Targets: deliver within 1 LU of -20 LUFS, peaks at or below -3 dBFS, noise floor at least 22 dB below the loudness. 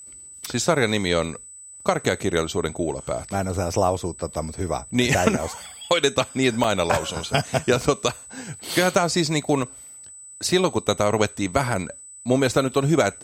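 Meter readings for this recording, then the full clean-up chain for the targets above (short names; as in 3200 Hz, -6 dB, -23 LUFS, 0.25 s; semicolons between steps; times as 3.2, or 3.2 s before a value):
dropouts 2; longest dropout 2.7 ms; steady tone 8000 Hz; tone level -40 dBFS; loudness -23.0 LUFS; peak -5.0 dBFS; loudness target -20.0 LUFS
-> interpolate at 6.64/9.62, 2.7 ms; notch 8000 Hz, Q 30; gain +3 dB; limiter -3 dBFS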